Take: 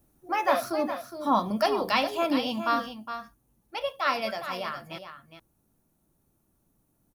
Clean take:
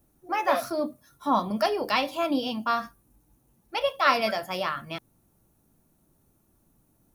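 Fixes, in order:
echo removal 412 ms −10 dB
level correction +5 dB, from 0:02.93

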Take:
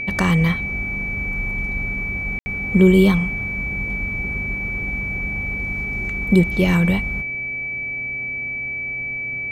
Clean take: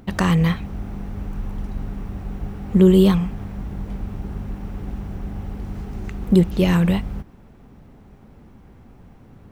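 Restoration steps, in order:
hum removal 126.4 Hz, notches 6
notch filter 2,300 Hz, Q 30
ambience match 0:02.39–0:02.46

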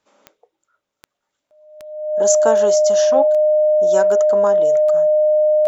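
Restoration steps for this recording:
click removal
notch filter 610 Hz, Q 30

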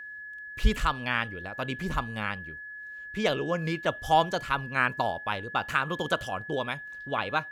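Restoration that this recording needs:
notch filter 1,700 Hz, Q 30

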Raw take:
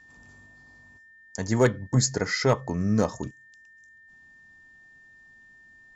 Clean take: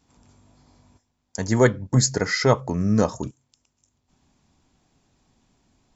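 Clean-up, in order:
clipped peaks rebuilt −11 dBFS
notch filter 1,800 Hz, Q 30
level 0 dB, from 0:00.46 +3.5 dB

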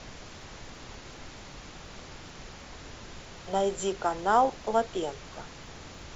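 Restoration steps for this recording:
click removal
noise reduction from a noise print 29 dB

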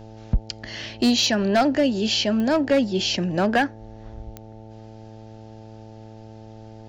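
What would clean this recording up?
clipped peaks rebuilt −12.5 dBFS
click removal
hum removal 110 Hz, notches 8

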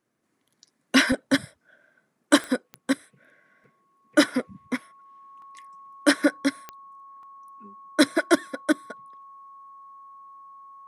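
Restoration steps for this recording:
click removal
notch filter 1,100 Hz, Q 30
repair the gap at 0:01.12/0:02.48/0:03.64/0:05.42/0:07.23, 2 ms

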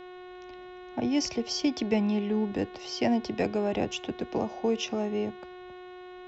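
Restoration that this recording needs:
hum removal 363.8 Hz, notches 11

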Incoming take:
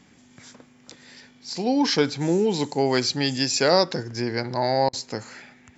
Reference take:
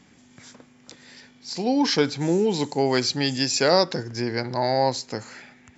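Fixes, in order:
repair the gap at 0:04.89, 40 ms

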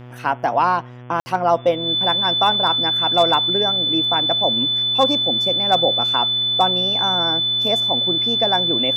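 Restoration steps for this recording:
clipped peaks rebuilt −6 dBFS
hum removal 123.2 Hz, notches 28
notch filter 3,500 Hz, Q 30
ambience match 0:01.20–0:01.26

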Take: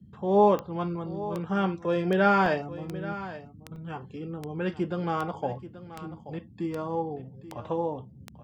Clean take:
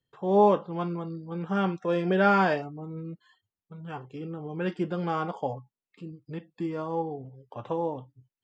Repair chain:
click removal
repair the gap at 0:02.46/0:03.76, 2 ms
noise reduction from a noise print 30 dB
echo removal 831 ms −14.5 dB

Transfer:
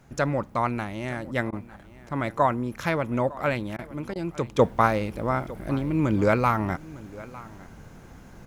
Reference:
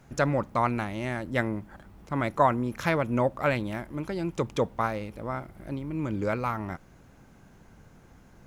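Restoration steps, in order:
repair the gap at 0:01.51/0:03.77/0:04.14, 15 ms
echo removal 905 ms −19.5 dB
level correction −7.5 dB, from 0:04.59

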